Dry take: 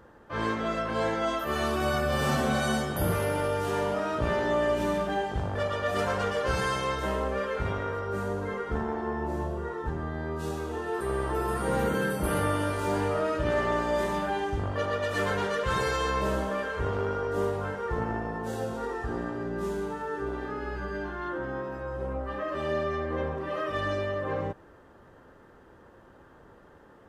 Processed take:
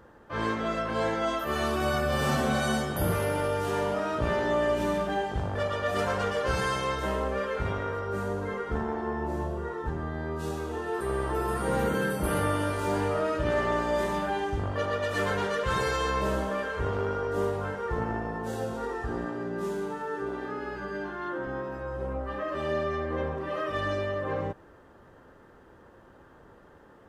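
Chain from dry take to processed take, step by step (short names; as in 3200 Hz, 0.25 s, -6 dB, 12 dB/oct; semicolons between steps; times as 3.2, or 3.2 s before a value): 19.26–21.47 HPF 120 Hz 12 dB/oct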